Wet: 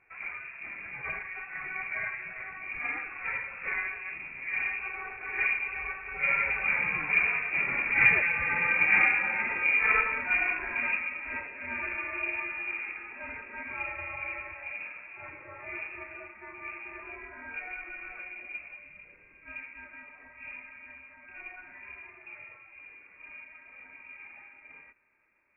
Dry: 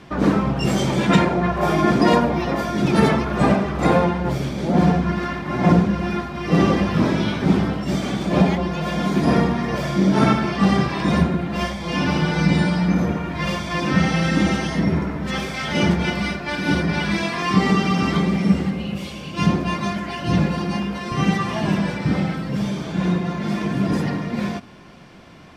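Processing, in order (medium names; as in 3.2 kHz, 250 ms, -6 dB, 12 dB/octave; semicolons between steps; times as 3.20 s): Doppler pass-by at 8.39 s, 16 m/s, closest 19 m; bass shelf 170 Hz -8 dB; frequency inversion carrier 2.6 kHz; trim -2.5 dB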